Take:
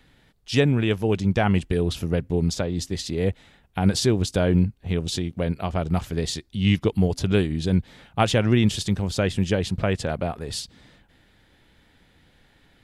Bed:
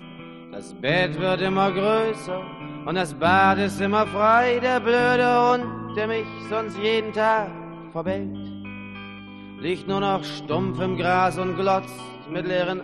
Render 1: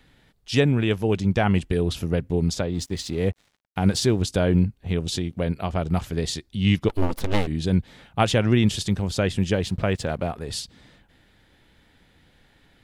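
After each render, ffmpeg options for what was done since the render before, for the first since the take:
-filter_complex "[0:a]asettb=1/sr,asplit=3[a][b][c];[a]atrim=end=2.744[d];[b]atrim=start=2.74:end=4.23,asetpts=PTS-STARTPTS,afade=t=in:d=0.004:c=qsin,afade=t=out:st=1.486:d=0.004:c=qsin,aeval=exprs='sgn(val(0))*max(abs(val(0))-0.00335,0)':c=same[e];[c]atrim=start=4.226[f];[d][e]acrossfade=d=0.004:c1=hsin:c2=qsin[g];[g][f]acrossfade=d=0.004:c1=qsin:c2=hsin,asplit=3[h][i][j];[h]afade=t=out:st=6.88:d=0.02[k];[i]aeval=exprs='abs(val(0))':c=same,afade=t=in:st=6.88:d=0.02,afade=t=out:st=7.46:d=0.02[l];[j]afade=t=in:st=7.46:d=0.02[m];[k][l][m]amix=inputs=3:normalize=0,asettb=1/sr,asplit=3[n][o][p];[n]atrim=end=9.534[q];[o]atrim=start=9.53:end=10.31,asetpts=PTS-STARTPTS,afade=t=in:d=0.004:c=qsin,afade=t=out:st=0.776:d=0.004:c=qsin,aeval=exprs='sgn(val(0))*max(abs(val(0))-0.00188,0)':c=same[r];[p]atrim=start=10.306[s];[q][r]acrossfade=d=0.004:c1=hsin:c2=qsin[t];[t][s]acrossfade=d=0.004:c1=qsin:c2=hsin"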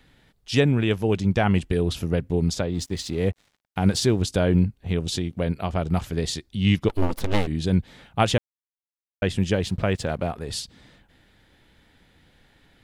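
-filter_complex "[0:a]asplit=3[a][b][c];[a]atrim=end=8.38,asetpts=PTS-STARTPTS,afade=t=out:st=8.376:d=0.004:c=hsin[d];[b]atrim=start=8.38:end=9.22,asetpts=PTS-STARTPTS,volume=0[e];[c]atrim=start=9.22,asetpts=PTS-STARTPTS,afade=t=in:d=0.004:c=hsin[f];[d][e][f]concat=n=3:v=0:a=1"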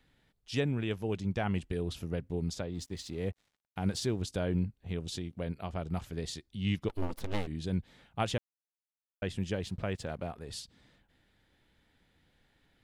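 -af "volume=-11.5dB"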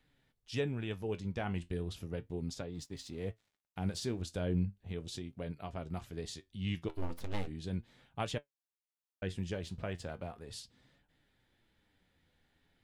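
-af "flanger=delay=6.5:depth=6.2:regen=64:speed=0.36:shape=triangular"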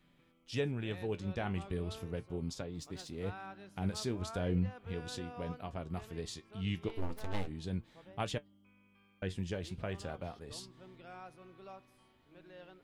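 -filter_complex "[1:a]volume=-30.5dB[a];[0:a][a]amix=inputs=2:normalize=0"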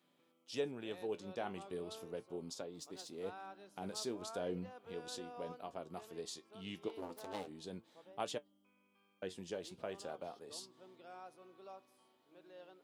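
-af "highpass=350,equalizer=f=2k:t=o:w=1.3:g=-8.5"

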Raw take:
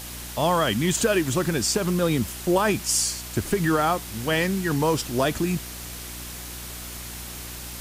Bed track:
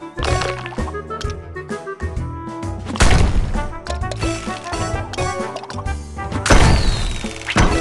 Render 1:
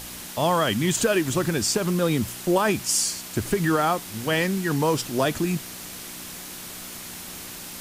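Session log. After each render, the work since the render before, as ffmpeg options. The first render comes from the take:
-af "bandreject=f=60:t=h:w=4,bandreject=f=120:t=h:w=4"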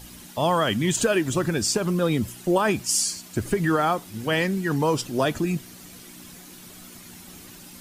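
-af "afftdn=nr=10:nf=-38"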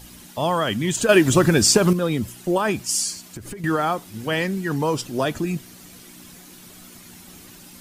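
-filter_complex "[0:a]asettb=1/sr,asplit=3[a][b][c];[a]atrim=end=3.194[d];[b]atrim=start=3.19:end=3.64,asetpts=PTS-STARTPTS,afade=t=in:d=0.004:c=qsin,afade=t=out:st=0.446:d=0.004:c=qsin,acompressor=threshold=-30dB:ratio=16:attack=3.2:release=140:knee=1:detection=peak[e];[c]atrim=start=3.636[f];[d][e]acrossfade=d=0.004:c1=hsin:c2=qsin[g];[g][f]acrossfade=d=0.004:c1=qsin:c2=hsin,asplit=3[h][i][j];[h]atrim=end=1.092[k];[i]atrim=start=1.088:end=1.932,asetpts=PTS-STARTPTS,volume=8dB[l];[j]atrim=start=1.928[m];[k][l]acrossfade=d=0.004:c1=hsin:c2=hsin[n];[n][m]acrossfade=d=0.004:c1=hsin:c2=hsin"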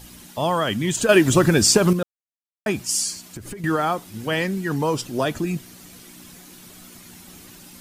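-filter_complex "[0:a]asplit=3[a][b][c];[a]atrim=end=2.03,asetpts=PTS-STARTPTS,afade=t=out:st=2.026:d=0.004:c=hsin[d];[b]atrim=start=2.03:end=2.66,asetpts=PTS-STARTPTS,volume=0[e];[c]atrim=start=2.66,asetpts=PTS-STARTPTS,afade=t=in:d=0.004:c=hsin[f];[d][e][f]concat=n=3:v=0:a=1"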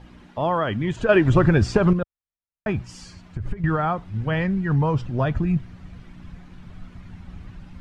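-af "lowpass=1.9k,asubboost=boost=11:cutoff=99"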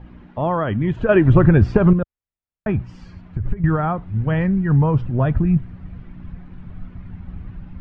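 -af "lowpass=2.4k,lowshelf=f=320:g=6.5"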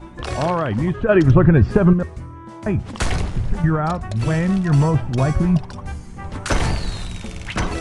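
-filter_complex "[1:a]volume=-8.5dB[a];[0:a][a]amix=inputs=2:normalize=0"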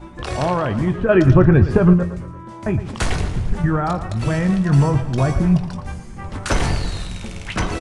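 -filter_complex "[0:a]asplit=2[a][b];[b]adelay=22,volume=-12dB[c];[a][c]amix=inputs=2:normalize=0,aecho=1:1:114|228|342|456|570:0.224|0.107|0.0516|0.0248|0.0119"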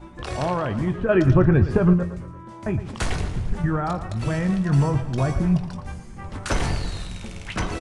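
-af "volume=-4.5dB"

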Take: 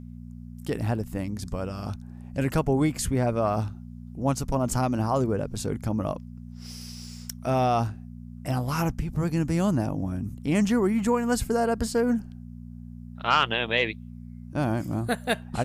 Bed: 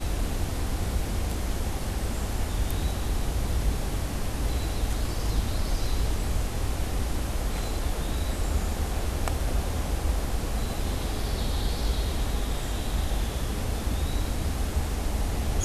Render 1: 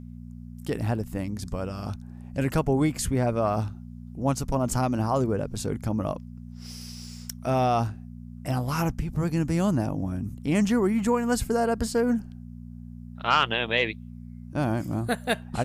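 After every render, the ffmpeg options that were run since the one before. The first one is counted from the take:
-af anull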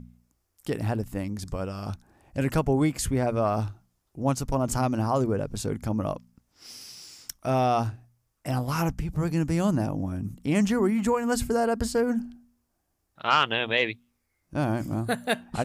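-af "bandreject=f=60:t=h:w=4,bandreject=f=120:t=h:w=4,bandreject=f=180:t=h:w=4,bandreject=f=240:t=h:w=4"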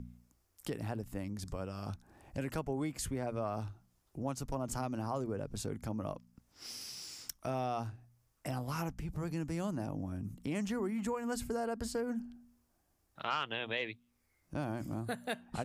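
-filter_complex "[0:a]acrossover=split=230[a][b];[a]alimiter=level_in=2dB:limit=-24dB:level=0:latency=1,volume=-2dB[c];[c][b]amix=inputs=2:normalize=0,acompressor=threshold=-43dB:ratio=2"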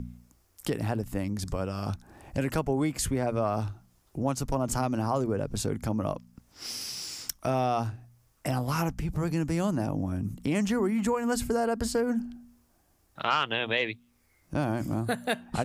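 -af "volume=9dB"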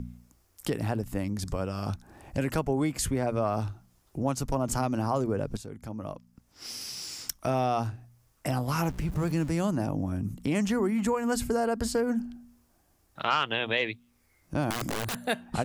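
-filter_complex "[0:a]asettb=1/sr,asplit=3[a][b][c];[a]atrim=end=8.834[d];[b]atrim=start=8.83:end=9.49,asetpts=PTS-STARTPTS,afade=t=in:d=0.004:c=qsin,afade=t=out:st=0.656:d=0.004:c=qsin,aeval=exprs='val(0)+0.5*0.00891*sgn(val(0))':c=same[e];[c]atrim=start=9.486[f];[d][e]acrossfade=d=0.004:c1=hsin:c2=qsin[g];[g][f]acrossfade=d=0.004:c1=qsin:c2=hsin,asettb=1/sr,asplit=3[h][i][j];[h]atrim=end=14.704[k];[i]atrim=start=14.7:end=15.26,asetpts=PTS-STARTPTS,afade=t=in:d=0.004:c=qsin,afade=t=out:st=0.556:d=0.004:c=qsin,aeval=exprs='(mod(18.8*val(0)+1,2)-1)/18.8':c=same[l];[j]atrim=start=15.256[m];[k][l]acrossfade=d=0.004:c1=hsin:c2=qsin[n];[n][m]acrossfade=d=0.004:c1=qsin:c2=hsin,asplit=2[o][p];[o]atrim=end=5.57,asetpts=PTS-STARTPTS,afade=t=out:st=5.566:d=0.004:c=hsin:silence=0.211349[q];[p]atrim=start=5.57,asetpts=PTS-STARTPTS,afade=t=in:d=1.7:silence=0.211349[r];[q][r]concat=n=2:v=0:a=1"

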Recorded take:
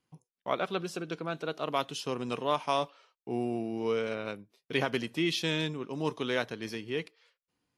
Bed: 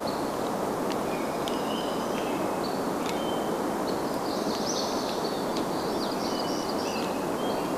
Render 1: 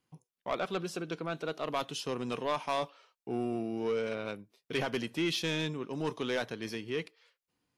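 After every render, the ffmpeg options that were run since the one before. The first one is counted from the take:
-af "asoftclip=type=tanh:threshold=-23.5dB"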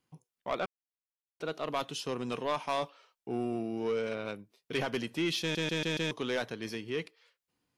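-filter_complex "[0:a]asplit=8[a][b][c][d][e][f][g][h];[a]atrim=end=0.66,asetpts=PTS-STARTPTS,afade=t=out:st=0.656:d=0.004:c=hsin[i];[b]atrim=start=0.66:end=1.4,asetpts=PTS-STARTPTS,volume=0[j];[c]atrim=start=1.4:end=5.552,asetpts=PTS-STARTPTS,afade=t=in:d=0.004:c=hsin[k];[d]atrim=start=5.408:end=5.552[l];[e]atrim=start=5.408:end=5.552[m];[f]atrim=start=5.408:end=5.552[n];[g]atrim=start=5.408:end=5.552[o];[h]atrim=start=6.108[p];[i][j][k]concat=n=3:v=0:a=1[q];[q][l]acrossfade=d=0.004:c1=hsin:c2=hsin[r];[r][m]acrossfade=d=0.004:c1=hsin:c2=hsin[s];[s][n]acrossfade=d=0.004:c1=hsin:c2=hsin[t];[t][o]acrossfade=d=0.004:c1=hsin:c2=hsin[u];[u][p]acrossfade=d=0.004:c1=hsin:c2=hsin"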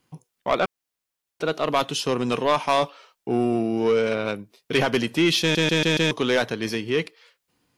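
-af "volume=11.5dB"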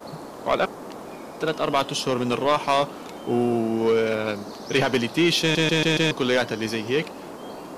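-filter_complex "[1:a]volume=-8.5dB[a];[0:a][a]amix=inputs=2:normalize=0"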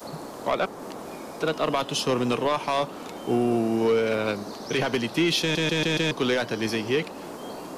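-filter_complex "[0:a]acrossover=split=250|540|4200[a][b][c][d];[d]acompressor=mode=upward:threshold=-46dB:ratio=2.5[e];[a][b][c][e]amix=inputs=4:normalize=0,alimiter=limit=-13.5dB:level=0:latency=1:release=200"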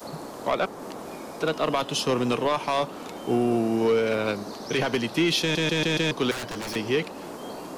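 -filter_complex "[0:a]asettb=1/sr,asplit=3[a][b][c];[a]atrim=end=6.314[d];[b]atrim=start=6.31:end=6.76,asetpts=PTS-STARTPTS,afade=t=in:d=0.004:c=qsin,afade=t=out:st=0.446:d=0.004:c=qsin,aeval=exprs='0.0422*(abs(mod(val(0)/0.0422+3,4)-2)-1)':c=same[e];[c]atrim=start=6.756[f];[d][e]acrossfade=d=0.004:c1=hsin:c2=qsin[g];[g][f]acrossfade=d=0.004:c1=qsin:c2=hsin"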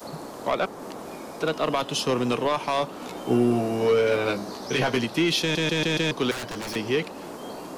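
-filter_complex "[0:a]asettb=1/sr,asplit=3[a][b][c];[a]atrim=end=3.004[d];[b]atrim=start=3:end=5.05,asetpts=PTS-STARTPTS,afade=t=in:d=0.004:c=qsin,afade=t=out:st=2.046:d=0.004:c=qsin,asplit=2[e][f];[f]adelay=16,volume=-3.5dB[g];[e][g]amix=inputs=2:normalize=0,atrim=end_sample=90405[h];[c]atrim=start=5.046[i];[d][h]acrossfade=d=0.004:c1=hsin:c2=qsin[j];[j][i]acrossfade=d=0.004:c1=qsin:c2=hsin"

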